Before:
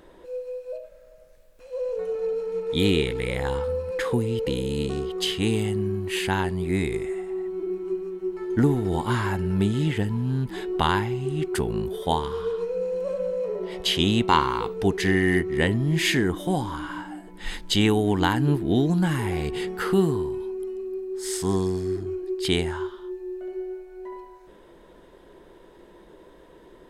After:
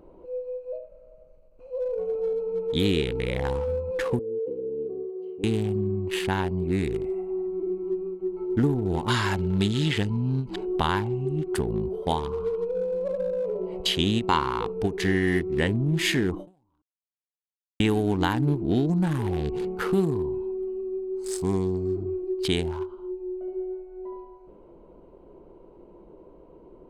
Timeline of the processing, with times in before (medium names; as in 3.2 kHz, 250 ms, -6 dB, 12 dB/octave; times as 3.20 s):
4.19–5.44 s: band-pass filter 430 Hz, Q 4.9
9.08–10.56 s: peaking EQ 4.5 kHz +13.5 dB 2.2 oct
16.82–17.80 s: mute
whole clip: local Wiener filter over 25 samples; compression 1.5:1, threshold -26 dBFS; endings held to a fixed fall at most 190 dB/s; trim +1.5 dB